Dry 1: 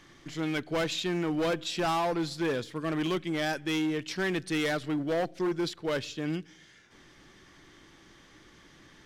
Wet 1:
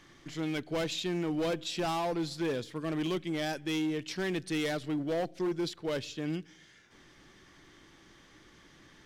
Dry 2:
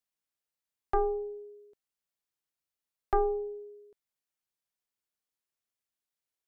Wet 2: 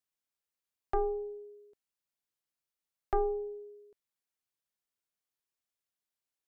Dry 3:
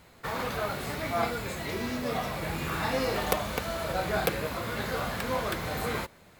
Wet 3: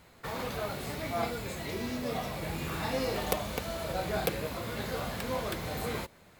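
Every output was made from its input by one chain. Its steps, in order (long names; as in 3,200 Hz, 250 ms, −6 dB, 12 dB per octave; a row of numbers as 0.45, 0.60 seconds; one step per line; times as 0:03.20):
dynamic equaliser 1,400 Hz, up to −5 dB, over −43 dBFS, Q 1.1
level −2 dB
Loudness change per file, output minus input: −3.0, −3.0, −3.5 LU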